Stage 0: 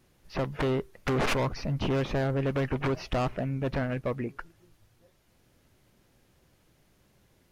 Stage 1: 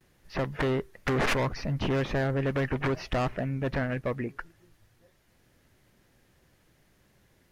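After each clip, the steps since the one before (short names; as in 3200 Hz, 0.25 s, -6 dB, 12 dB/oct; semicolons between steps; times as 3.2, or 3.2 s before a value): gate with hold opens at -58 dBFS; bell 1800 Hz +5.5 dB 0.41 oct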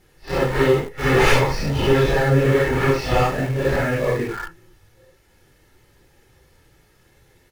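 phase scrambler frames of 0.2 s; comb 2.3 ms, depth 46%; in parallel at -10 dB: bit-crush 6-bit; on the sum: gain +7.5 dB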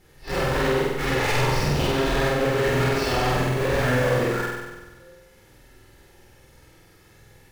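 limiter -11.5 dBFS, peak gain reduction 8.5 dB; hard clip -23 dBFS, distortion -8 dB; flutter echo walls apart 8.2 m, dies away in 1.2 s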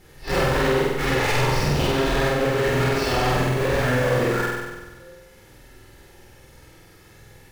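vocal rider within 4 dB 0.5 s; gain +1.5 dB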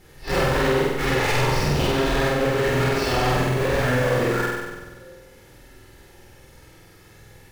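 dark delay 0.154 s, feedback 72%, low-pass 500 Hz, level -20.5 dB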